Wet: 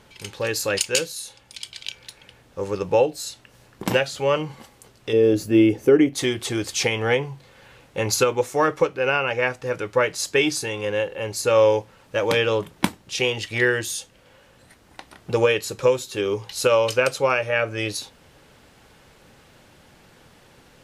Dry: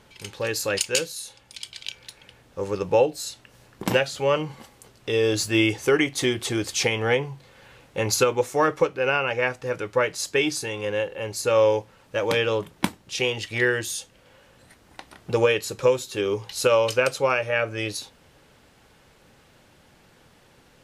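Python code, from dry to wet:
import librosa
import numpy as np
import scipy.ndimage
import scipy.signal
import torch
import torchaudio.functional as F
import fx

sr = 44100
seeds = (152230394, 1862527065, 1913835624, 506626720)

p1 = fx.graphic_eq(x, sr, hz=(250, 500, 1000, 2000, 4000, 8000), db=(9, 4, -7, -4, -9, -10), at=(5.13, 6.15))
p2 = fx.rider(p1, sr, range_db=10, speed_s=2.0)
p3 = p1 + (p2 * librosa.db_to_amplitude(1.0))
y = p3 * librosa.db_to_amplitude(-5.5)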